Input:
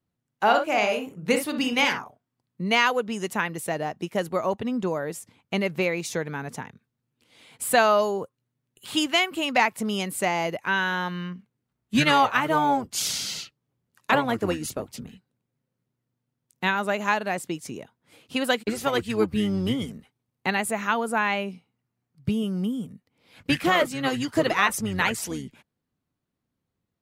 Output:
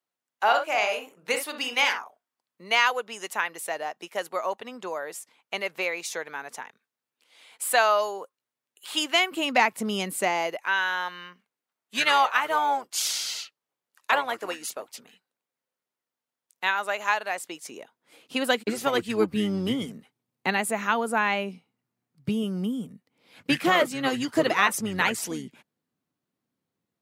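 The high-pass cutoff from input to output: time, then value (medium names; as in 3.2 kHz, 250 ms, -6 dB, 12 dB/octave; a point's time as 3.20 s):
8.90 s 630 Hz
9.48 s 180 Hz
10.09 s 180 Hz
10.70 s 660 Hz
17.36 s 660 Hz
18.69 s 170 Hz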